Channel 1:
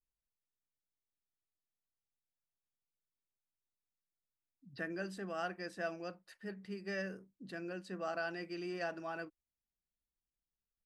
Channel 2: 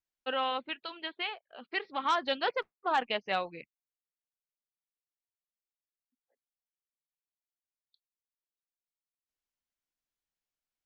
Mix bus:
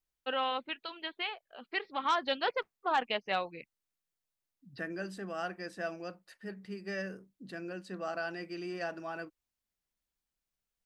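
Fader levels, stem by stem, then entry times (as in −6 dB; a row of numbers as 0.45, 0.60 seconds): +2.0, −1.0 decibels; 0.00, 0.00 seconds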